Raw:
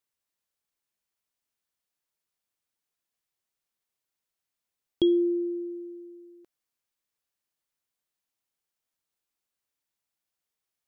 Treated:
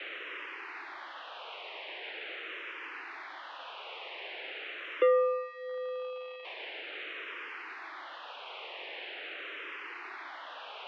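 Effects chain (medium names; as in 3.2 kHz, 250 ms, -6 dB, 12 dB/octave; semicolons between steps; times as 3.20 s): zero-crossing glitches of -22 dBFS; peaking EQ 700 Hz -4 dB 1.6 oct; waveshaping leveller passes 3; mistuned SSB +160 Hz 170–2700 Hz; 5.19–5.69 s: band-stop 1.6 kHz, Q 5.8; barber-pole phaser -0.43 Hz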